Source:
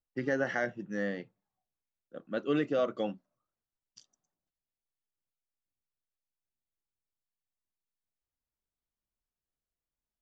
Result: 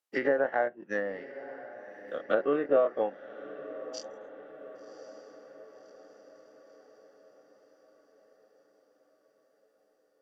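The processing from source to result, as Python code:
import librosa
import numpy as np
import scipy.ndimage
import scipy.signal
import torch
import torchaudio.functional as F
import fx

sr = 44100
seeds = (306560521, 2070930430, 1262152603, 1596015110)

p1 = fx.spec_dilate(x, sr, span_ms=60)
p2 = scipy.signal.sosfilt(scipy.signal.butter(2, 470.0, 'highpass', fs=sr, output='sos'), p1)
p3 = fx.env_lowpass_down(p2, sr, base_hz=1100.0, full_db=-30.5)
p4 = fx.transient(p3, sr, attack_db=7, sustain_db=-10)
p5 = p4 + fx.echo_diffused(p4, sr, ms=1101, feedback_pct=54, wet_db=-15, dry=0)
y = p5 * librosa.db_to_amplitude(3.0)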